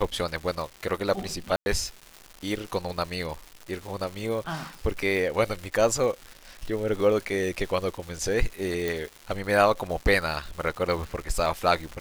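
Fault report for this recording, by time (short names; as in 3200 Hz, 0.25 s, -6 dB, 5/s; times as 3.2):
crackle 320/s -34 dBFS
1.56–1.66 gap 0.101 s
8.88 pop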